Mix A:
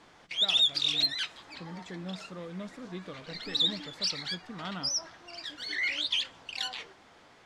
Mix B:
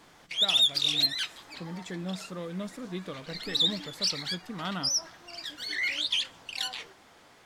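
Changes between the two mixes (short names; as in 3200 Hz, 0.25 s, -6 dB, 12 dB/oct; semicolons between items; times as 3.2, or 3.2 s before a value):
speech +4.0 dB; master: remove air absorption 58 m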